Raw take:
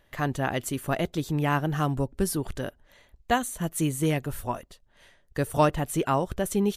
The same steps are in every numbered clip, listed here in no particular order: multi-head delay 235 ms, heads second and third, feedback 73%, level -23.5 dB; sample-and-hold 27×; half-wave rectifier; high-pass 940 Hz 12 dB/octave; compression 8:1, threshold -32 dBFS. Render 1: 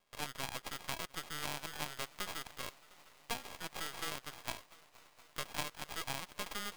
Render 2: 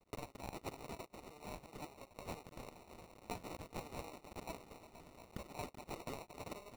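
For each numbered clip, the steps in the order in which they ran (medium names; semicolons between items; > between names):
sample-and-hold > high-pass > compression > multi-head delay > half-wave rectifier; multi-head delay > compression > half-wave rectifier > high-pass > sample-and-hold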